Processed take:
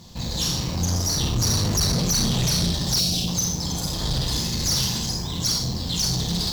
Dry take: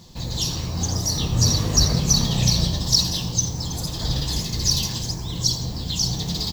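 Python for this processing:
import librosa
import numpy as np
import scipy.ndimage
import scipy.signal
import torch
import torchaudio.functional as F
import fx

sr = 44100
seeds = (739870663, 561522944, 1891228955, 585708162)

y = fx.rev_schroeder(x, sr, rt60_s=0.45, comb_ms=31, drr_db=1.5)
y = fx.tube_stage(y, sr, drive_db=20.0, bias=0.4)
y = fx.spec_box(y, sr, start_s=2.99, length_s=0.29, low_hz=790.0, high_hz=2200.0, gain_db=-12)
y = y * 10.0 ** (2.0 / 20.0)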